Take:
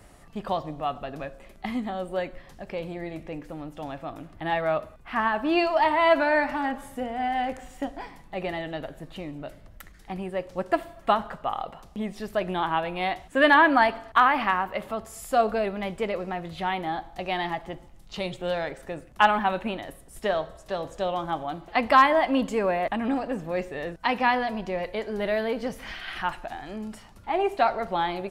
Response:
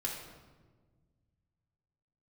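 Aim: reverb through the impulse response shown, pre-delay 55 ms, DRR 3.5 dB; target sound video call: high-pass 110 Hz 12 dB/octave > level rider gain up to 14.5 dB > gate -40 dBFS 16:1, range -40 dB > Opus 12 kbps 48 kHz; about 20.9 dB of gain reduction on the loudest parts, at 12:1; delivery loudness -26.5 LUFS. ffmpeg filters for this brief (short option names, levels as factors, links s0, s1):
-filter_complex "[0:a]acompressor=threshold=0.0178:ratio=12,asplit=2[s0][s1];[1:a]atrim=start_sample=2205,adelay=55[s2];[s1][s2]afir=irnorm=-1:irlink=0,volume=0.501[s3];[s0][s3]amix=inputs=2:normalize=0,highpass=110,dynaudnorm=m=5.31,agate=range=0.01:threshold=0.01:ratio=16,volume=1.33" -ar 48000 -c:a libopus -b:a 12k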